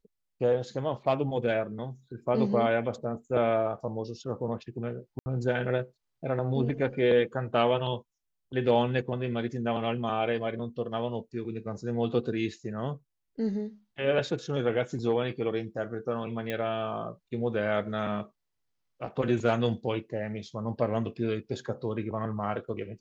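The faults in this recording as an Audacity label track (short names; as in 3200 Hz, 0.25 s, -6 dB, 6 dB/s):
5.190000	5.260000	gap 70 ms
16.500000	16.500000	pop -19 dBFS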